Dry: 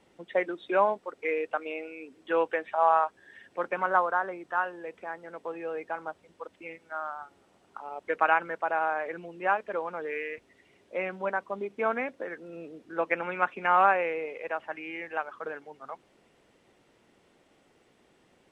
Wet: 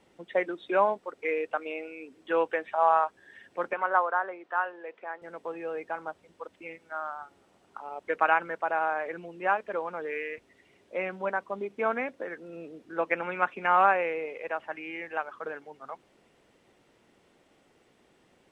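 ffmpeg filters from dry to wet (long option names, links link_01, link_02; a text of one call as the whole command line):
ffmpeg -i in.wav -filter_complex "[0:a]asettb=1/sr,asplit=3[link_01][link_02][link_03];[link_01]atrim=end=3.734[link_04];[link_02]atrim=start=3.73:end=5.22,asetpts=PTS-STARTPTS,afade=type=in:duration=0.004:curve=qsin,afade=type=out:start_time=1.486:duration=0.004:curve=qsin,highpass=400,lowpass=3300[link_05];[link_03]atrim=start=5.216[link_06];[link_04][link_05]acrossfade=duration=0.004:curve1=hsin:curve2=qsin[link_07];[link_07][link_06]acrossfade=duration=0.004:curve1=qsin:curve2=hsin" out.wav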